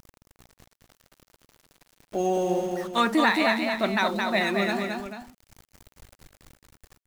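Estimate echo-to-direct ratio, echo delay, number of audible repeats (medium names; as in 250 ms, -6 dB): -3.0 dB, 219 ms, 2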